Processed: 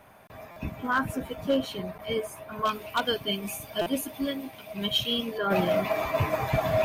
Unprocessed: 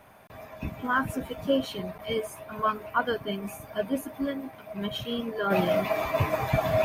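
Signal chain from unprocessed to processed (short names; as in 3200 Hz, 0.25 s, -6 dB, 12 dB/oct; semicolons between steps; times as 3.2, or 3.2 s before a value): hard clip -17.5 dBFS, distortion -22 dB; 2.65–5.38 resonant high shelf 2200 Hz +8 dB, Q 1.5; stuck buffer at 0.51/3.81, samples 256, times 8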